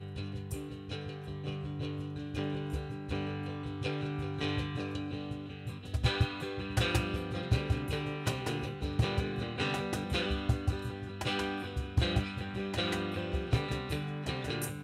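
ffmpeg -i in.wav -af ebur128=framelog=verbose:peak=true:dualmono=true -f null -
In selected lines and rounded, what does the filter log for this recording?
Integrated loudness:
  I:         -32.0 LUFS
  Threshold: -42.0 LUFS
Loudness range:
  LRA:         4.4 LU
  Threshold: -51.7 LUFS
  LRA low:   -34.8 LUFS
  LRA high:  -30.4 LUFS
True peak:
  Peak:      -16.7 dBFS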